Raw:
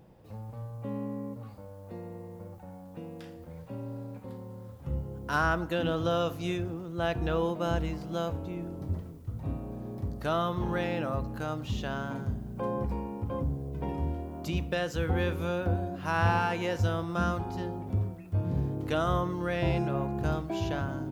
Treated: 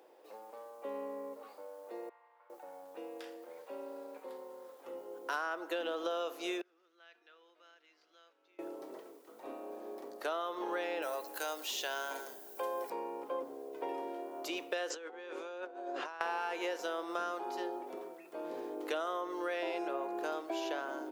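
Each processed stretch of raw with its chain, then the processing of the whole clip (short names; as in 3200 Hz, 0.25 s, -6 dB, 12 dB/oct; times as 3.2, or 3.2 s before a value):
2.09–2.5 HPF 1000 Hz 24 dB/oct + air absorption 470 m
6.61–8.59 compressor 3:1, threshold -35 dBFS + flipped gate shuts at -37 dBFS, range -29 dB + band shelf 2800 Hz +14 dB 2.6 oct
11.02–12.9 RIAA curve recording + notch 1200 Hz, Q 8.5
14.9–16.21 Chebyshev low-pass 7400 Hz, order 3 + tone controls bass -5 dB, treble -1 dB + negative-ratio compressor -42 dBFS
whole clip: steep high-pass 350 Hz 36 dB/oct; compressor, threshold -34 dBFS; gain +1 dB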